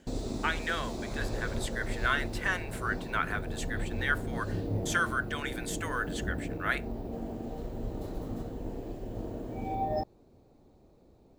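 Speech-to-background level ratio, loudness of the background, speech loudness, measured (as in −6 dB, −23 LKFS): 3.5 dB, −37.5 LKFS, −34.0 LKFS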